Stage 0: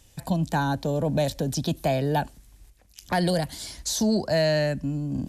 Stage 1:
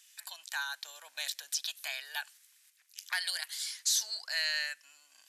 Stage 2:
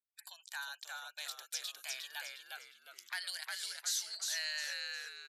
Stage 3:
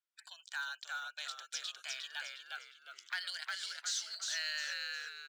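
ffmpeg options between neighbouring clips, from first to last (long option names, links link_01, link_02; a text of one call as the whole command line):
ffmpeg -i in.wav -af "highpass=frequency=1500:width=0.5412,highpass=frequency=1500:width=1.3066" out.wav
ffmpeg -i in.wav -filter_complex "[0:a]agate=range=-6dB:threshold=-53dB:ratio=16:detection=peak,afftfilt=real='re*gte(hypot(re,im),0.00158)':imag='im*gte(hypot(re,im),0.00158)':win_size=1024:overlap=0.75,asplit=2[link_01][link_02];[link_02]asplit=5[link_03][link_04][link_05][link_06][link_07];[link_03]adelay=357,afreqshift=-100,volume=-3dB[link_08];[link_04]adelay=714,afreqshift=-200,volume=-11.6dB[link_09];[link_05]adelay=1071,afreqshift=-300,volume=-20.3dB[link_10];[link_06]adelay=1428,afreqshift=-400,volume=-28.9dB[link_11];[link_07]adelay=1785,afreqshift=-500,volume=-37.5dB[link_12];[link_08][link_09][link_10][link_11][link_12]amix=inputs=5:normalize=0[link_13];[link_01][link_13]amix=inputs=2:normalize=0,volume=-7dB" out.wav
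ffmpeg -i in.wav -af "aeval=exprs='0.0631*(cos(1*acos(clip(val(0)/0.0631,-1,1)))-cos(1*PI/2))+0.000891*(cos(4*acos(clip(val(0)/0.0631,-1,1)))-cos(4*PI/2))':channel_layout=same,highpass=380,equalizer=frequency=870:width_type=q:width=4:gain=-3,equalizer=frequency=1400:width_type=q:width=4:gain=8,equalizer=frequency=3100:width_type=q:width=4:gain=5,lowpass=frequency=7600:width=0.5412,lowpass=frequency=7600:width=1.3066,acrusher=bits=7:mode=log:mix=0:aa=0.000001,volume=-1dB" out.wav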